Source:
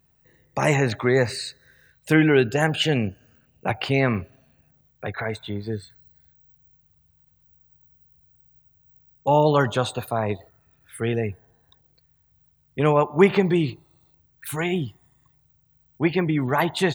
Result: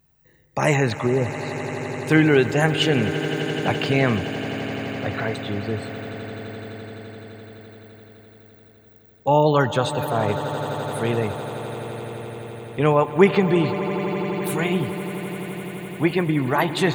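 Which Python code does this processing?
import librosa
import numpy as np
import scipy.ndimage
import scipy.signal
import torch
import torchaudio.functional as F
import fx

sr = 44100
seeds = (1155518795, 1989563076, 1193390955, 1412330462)

y = fx.env_lowpass_down(x, sr, base_hz=400.0, full_db=-19.0, at=(0.91, 2.11))
y = fx.echo_swell(y, sr, ms=85, loudest=8, wet_db=-16.0)
y = F.gain(torch.from_numpy(y), 1.0).numpy()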